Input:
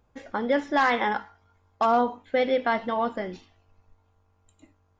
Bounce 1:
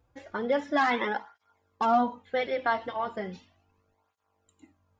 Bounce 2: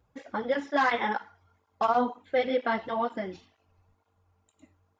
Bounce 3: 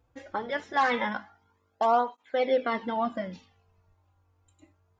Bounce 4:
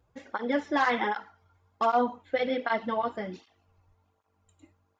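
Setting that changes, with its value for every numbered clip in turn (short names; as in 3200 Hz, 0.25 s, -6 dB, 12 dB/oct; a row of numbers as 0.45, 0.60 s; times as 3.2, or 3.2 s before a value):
tape flanging out of phase, nulls at: 0.36, 2.1, 0.23, 1.3 Hz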